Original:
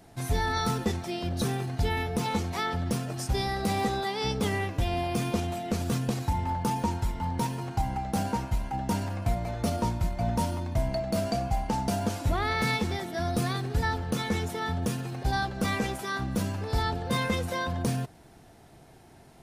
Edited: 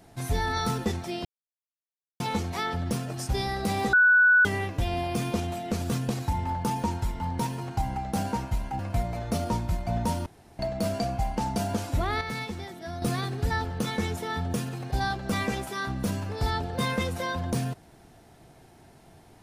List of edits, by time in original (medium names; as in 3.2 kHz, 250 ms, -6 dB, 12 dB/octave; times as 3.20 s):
1.25–2.20 s: mute
3.93–4.45 s: bleep 1.48 kHz -15 dBFS
8.79–9.11 s: delete
10.58–10.91 s: room tone
12.53–13.34 s: gain -6.5 dB